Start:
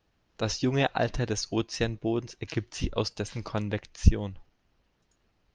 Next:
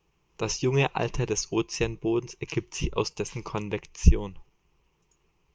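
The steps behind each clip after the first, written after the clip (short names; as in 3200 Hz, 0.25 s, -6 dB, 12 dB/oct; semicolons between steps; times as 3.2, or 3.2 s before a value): ripple EQ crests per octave 0.74, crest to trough 11 dB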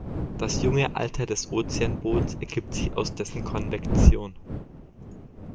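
wind noise 230 Hz -30 dBFS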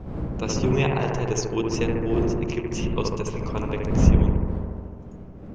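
analogue delay 71 ms, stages 1024, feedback 78%, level -3 dB; gain -1 dB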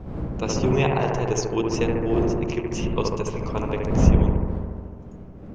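dynamic EQ 690 Hz, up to +4 dB, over -35 dBFS, Q 1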